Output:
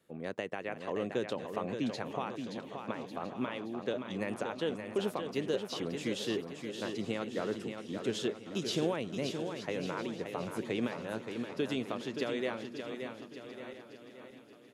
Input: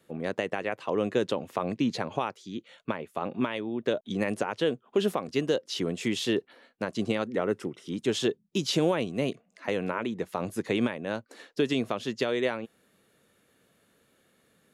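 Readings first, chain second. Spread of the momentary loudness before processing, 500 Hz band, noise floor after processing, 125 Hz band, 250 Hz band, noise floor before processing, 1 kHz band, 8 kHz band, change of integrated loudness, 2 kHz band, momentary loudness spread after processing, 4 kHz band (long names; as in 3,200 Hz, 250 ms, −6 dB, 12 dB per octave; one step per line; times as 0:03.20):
8 LU, −6.0 dB, −53 dBFS, −6.5 dB, −6.0 dB, −68 dBFS, −6.0 dB, −6.0 dB, −6.5 dB, −6.0 dB, 8 LU, −6.0 dB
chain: feedback delay that plays each chunk backwards 654 ms, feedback 61%, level −13.5 dB
repeating echo 574 ms, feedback 47%, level −7 dB
level −7.5 dB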